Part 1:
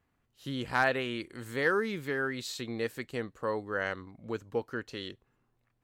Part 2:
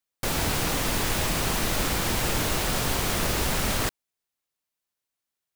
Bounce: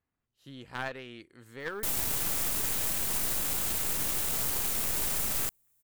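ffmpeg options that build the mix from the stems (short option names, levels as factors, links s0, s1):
-filter_complex "[0:a]aeval=exprs='0.178*(cos(1*acos(clip(val(0)/0.178,-1,1)))-cos(1*PI/2))+0.0562*(cos(3*acos(clip(val(0)/0.178,-1,1)))-cos(3*PI/2))+0.00562*(cos(4*acos(clip(val(0)/0.178,-1,1)))-cos(4*PI/2))+0.0126*(cos(5*acos(clip(val(0)/0.178,-1,1)))-cos(5*PI/2))':c=same,volume=0.708[s0];[1:a]aexciter=amount=4.8:drive=4.5:freq=6800,adelay=1600,volume=1.26[s1];[s0][s1]amix=inputs=2:normalize=0,aeval=exprs='clip(val(0),-1,0.0316)':c=same,alimiter=limit=0.119:level=0:latency=1:release=11"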